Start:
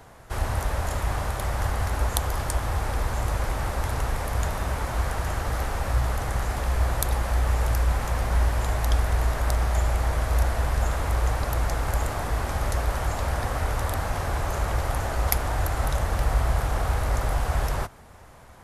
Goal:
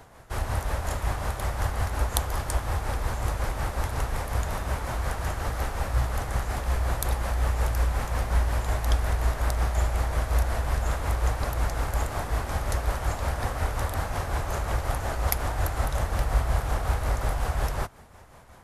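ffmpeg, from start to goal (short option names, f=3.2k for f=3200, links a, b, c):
-af "tremolo=f=5.5:d=0.45"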